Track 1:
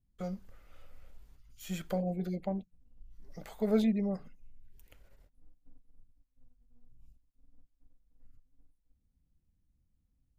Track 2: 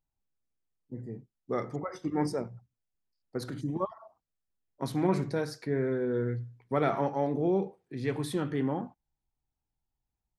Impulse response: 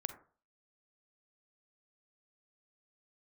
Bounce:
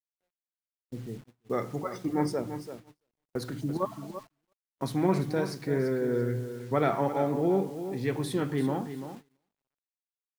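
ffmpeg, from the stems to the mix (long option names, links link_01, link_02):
-filter_complex "[0:a]equalizer=frequency=210:width=0.33:gain=2.5,asplit=2[link_01][link_02];[link_02]afreqshift=0.38[link_03];[link_01][link_03]amix=inputs=2:normalize=1,volume=-16.5dB[link_04];[1:a]volume=1.5dB,asplit=3[link_05][link_06][link_07];[link_06]volume=-10.5dB[link_08];[link_07]apad=whole_len=458054[link_09];[link_04][link_09]sidechaincompress=threshold=-34dB:ratio=8:attack=16:release=390[link_10];[link_08]aecho=0:1:338|676|1014|1352:1|0.26|0.0676|0.0176[link_11];[link_10][link_05][link_11]amix=inputs=3:normalize=0,acrusher=bits=8:mix=0:aa=0.000001,agate=range=-29dB:threshold=-44dB:ratio=16:detection=peak"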